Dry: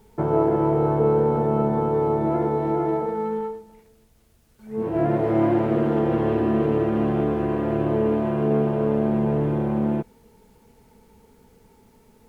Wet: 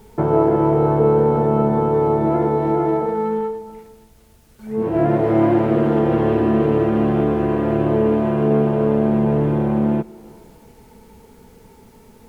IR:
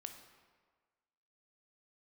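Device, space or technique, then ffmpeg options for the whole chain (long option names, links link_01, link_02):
compressed reverb return: -filter_complex "[0:a]asplit=2[link_01][link_02];[1:a]atrim=start_sample=2205[link_03];[link_02][link_03]afir=irnorm=-1:irlink=0,acompressor=threshold=-39dB:ratio=6,volume=2dB[link_04];[link_01][link_04]amix=inputs=2:normalize=0,volume=3.5dB"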